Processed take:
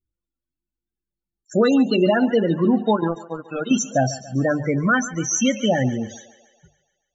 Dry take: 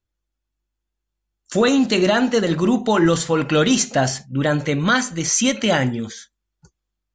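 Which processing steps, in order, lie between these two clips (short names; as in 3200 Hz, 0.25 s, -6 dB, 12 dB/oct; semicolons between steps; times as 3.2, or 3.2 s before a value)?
notches 50/100/150 Hz; 2.96–3.71 power-law curve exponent 3; loudest bins only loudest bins 16; thinning echo 0.141 s, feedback 59%, high-pass 330 Hz, level -16 dB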